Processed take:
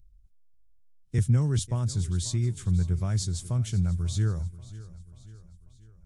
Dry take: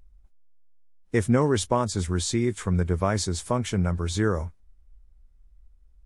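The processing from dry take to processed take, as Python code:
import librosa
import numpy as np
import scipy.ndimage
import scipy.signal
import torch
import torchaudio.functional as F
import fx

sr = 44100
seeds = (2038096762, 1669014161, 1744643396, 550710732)

y = fx.graphic_eq(x, sr, hz=(125, 250, 500, 1000, 2000), db=(10, -7, -11, -11, -8))
y = fx.echo_feedback(y, sr, ms=539, feedback_pct=52, wet_db=-18.0)
y = fx.band_squash(y, sr, depth_pct=40, at=(1.18, 1.59))
y = y * 10.0 ** (-3.5 / 20.0)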